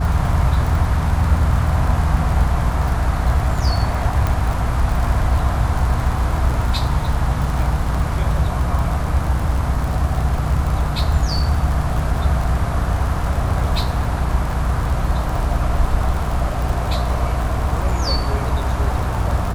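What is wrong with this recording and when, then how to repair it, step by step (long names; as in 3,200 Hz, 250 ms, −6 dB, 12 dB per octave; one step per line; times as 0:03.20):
surface crackle 46 per second −23 dBFS
mains hum 60 Hz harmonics 5 −23 dBFS
0:04.27: click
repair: click removal
hum removal 60 Hz, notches 5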